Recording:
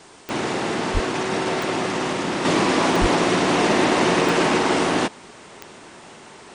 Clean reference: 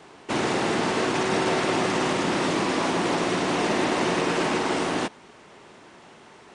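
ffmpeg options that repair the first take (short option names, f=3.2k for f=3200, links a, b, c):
-filter_complex "[0:a]adeclick=t=4,asplit=3[a][b][c];[a]afade=t=out:st=0.93:d=0.02[d];[b]highpass=f=140:w=0.5412,highpass=f=140:w=1.3066,afade=t=in:st=0.93:d=0.02,afade=t=out:st=1.05:d=0.02[e];[c]afade=t=in:st=1.05:d=0.02[f];[d][e][f]amix=inputs=3:normalize=0,asplit=3[g][h][i];[g]afade=t=out:st=3:d=0.02[j];[h]highpass=f=140:w=0.5412,highpass=f=140:w=1.3066,afade=t=in:st=3:d=0.02,afade=t=out:st=3.12:d=0.02[k];[i]afade=t=in:st=3.12:d=0.02[l];[j][k][l]amix=inputs=3:normalize=0,agate=range=-21dB:threshold=-36dB,asetnsamples=n=441:p=0,asendcmd='2.45 volume volume -5.5dB',volume=0dB"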